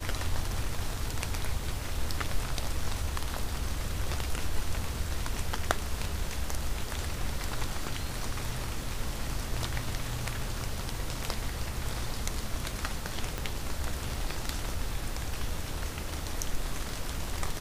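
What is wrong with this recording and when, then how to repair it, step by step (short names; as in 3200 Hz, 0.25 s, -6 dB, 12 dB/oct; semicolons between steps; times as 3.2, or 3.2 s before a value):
13.38 pop -18 dBFS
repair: de-click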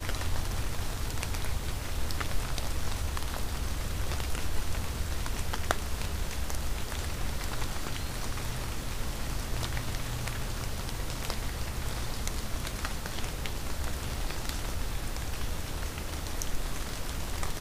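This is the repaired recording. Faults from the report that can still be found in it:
13.38 pop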